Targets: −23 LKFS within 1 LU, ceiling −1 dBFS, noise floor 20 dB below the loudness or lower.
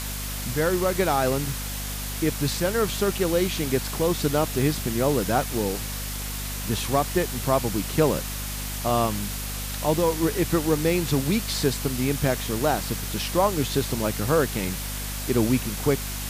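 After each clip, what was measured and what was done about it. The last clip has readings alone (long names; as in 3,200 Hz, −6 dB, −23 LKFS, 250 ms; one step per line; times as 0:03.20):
mains hum 50 Hz; hum harmonics up to 250 Hz; level of the hum −31 dBFS; background noise floor −31 dBFS; target noise floor −45 dBFS; integrated loudness −25.0 LKFS; sample peak −7.5 dBFS; target loudness −23.0 LKFS
→ mains-hum notches 50/100/150/200/250 Hz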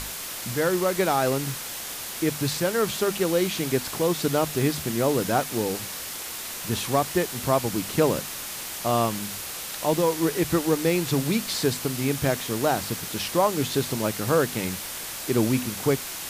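mains hum none found; background noise floor −35 dBFS; target noise floor −46 dBFS
→ broadband denoise 11 dB, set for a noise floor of −35 dBFS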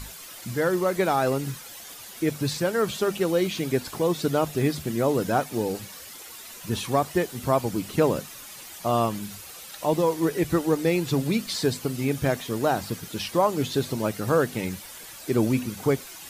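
background noise floor −43 dBFS; target noise floor −46 dBFS
→ broadband denoise 6 dB, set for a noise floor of −43 dBFS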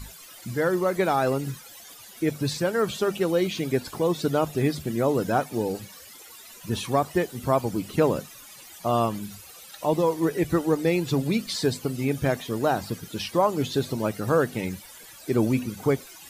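background noise floor −46 dBFS; integrated loudness −26.0 LKFS; sample peak −8.5 dBFS; target loudness −23.0 LKFS
→ level +3 dB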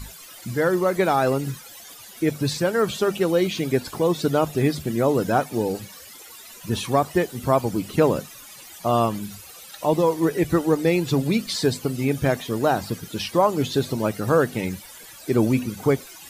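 integrated loudness −23.0 LKFS; sample peak −5.5 dBFS; background noise floor −43 dBFS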